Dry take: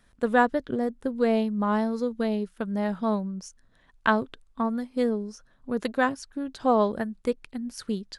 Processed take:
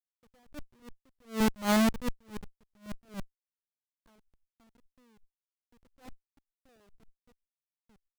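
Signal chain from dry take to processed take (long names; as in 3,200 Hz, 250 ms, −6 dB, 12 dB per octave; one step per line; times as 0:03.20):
low-pass that shuts in the quiet parts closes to 670 Hz, open at −21.5 dBFS
comparator with hysteresis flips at −25.5 dBFS
level that may rise only so fast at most 220 dB per second
level +4.5 dB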